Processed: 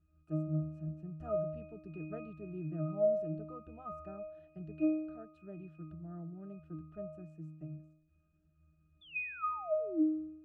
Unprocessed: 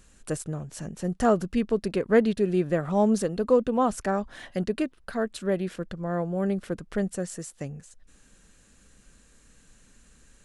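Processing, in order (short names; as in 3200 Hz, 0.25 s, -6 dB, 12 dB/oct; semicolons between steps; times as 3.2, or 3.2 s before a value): painted sound fall, 9.01–10.03, 280–3600 Hz -21 dBFS; octave resonator D#, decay 0.78 s; gain +6.5 dB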